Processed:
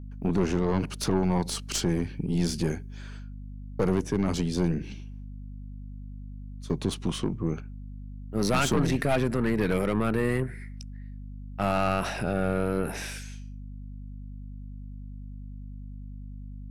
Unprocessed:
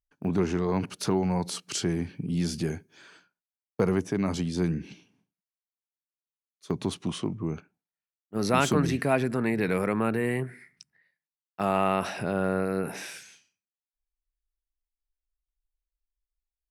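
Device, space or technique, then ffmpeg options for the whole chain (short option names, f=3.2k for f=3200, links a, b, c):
valve amplifier with mains hum: -af "aeval=exprs='(tanh(14.1*val(0)+0.55)-tanh(0.55))/14.1':c=same,aeval=exprs='val(0)+0.00708*(sin(2*PI*50*n/s)+sin(2*PI*2*50*n/s)/2+sin(2*PI*3*50*n/s)/3+sin(2*PI*4*50*n/s)/4+sin(2*PI*5*50*n/s)/5)':c=same,volume=4.5dB"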